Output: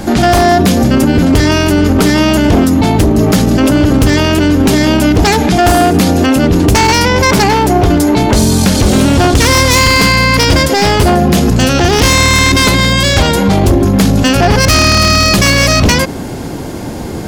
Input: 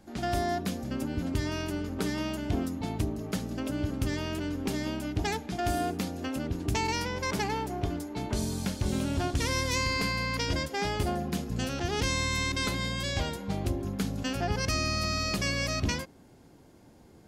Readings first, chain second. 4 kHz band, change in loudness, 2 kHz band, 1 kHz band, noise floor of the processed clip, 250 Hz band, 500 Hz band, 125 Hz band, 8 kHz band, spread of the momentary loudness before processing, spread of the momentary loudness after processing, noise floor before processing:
+21.5 dB, +22.0 dB, +21.5 dB, +22.0 dB, -21 dBFS, +23.0 dB, +22.5 dB, +21.5 dB, +22.5 dB, 5 LU, 3 LU, -55 dBFS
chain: wavefolder -24 dBFS; loudness maximiser +35.5 dB; trim -1 dB

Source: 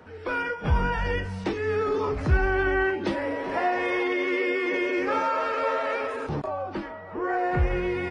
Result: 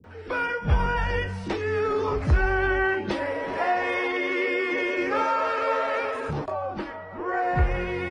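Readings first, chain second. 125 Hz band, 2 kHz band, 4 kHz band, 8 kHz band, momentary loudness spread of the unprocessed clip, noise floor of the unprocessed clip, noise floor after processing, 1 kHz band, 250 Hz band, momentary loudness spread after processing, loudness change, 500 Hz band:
+1.5 dB, +1.5 dB, +1.5 dB, no reading, 7 LU, -40 dBFS, -38 dBFS, +1.5 dB, -1.5 dB, 7 LU, +0.5 dB, 0.0 dB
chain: bands offset in time lows, highs 40 ms, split 280 Hz; trim +1.5 dB

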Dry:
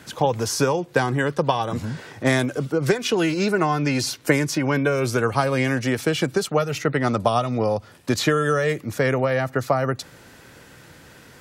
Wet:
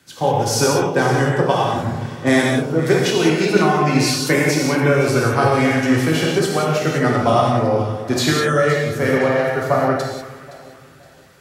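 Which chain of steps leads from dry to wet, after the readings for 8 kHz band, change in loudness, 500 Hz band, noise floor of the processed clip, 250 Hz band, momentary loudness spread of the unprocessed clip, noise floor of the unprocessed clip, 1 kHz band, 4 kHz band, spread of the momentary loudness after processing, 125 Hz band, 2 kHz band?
+5.5 dB, +5.0 dB, +5.0 dB, -45 dBFS, +5.5 dB, 4 LU, -48 dBFS, +5.5 dB, +5.5 dB, 5 LU, +5.0 dB, +5.0 dB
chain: echo whose repeats swap between lows and highs 259 ms, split 1 kHz, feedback 66%, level -9 dB; gated-style reverb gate 220 ms flat, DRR -3 dB; three bands expanded up and down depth 40%

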